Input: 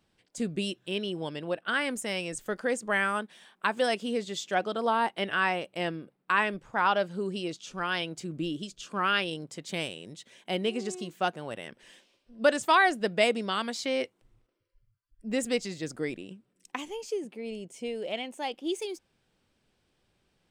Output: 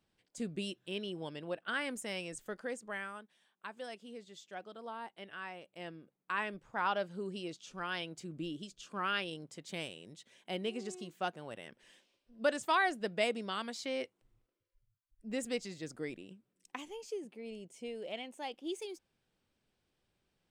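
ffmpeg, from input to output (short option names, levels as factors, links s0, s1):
-af "volume=1.33,afade=t=out:st=2.21:d=1:silence=0.298538,afade=t=in:st=5.52:d=1.3:silence=0.316228"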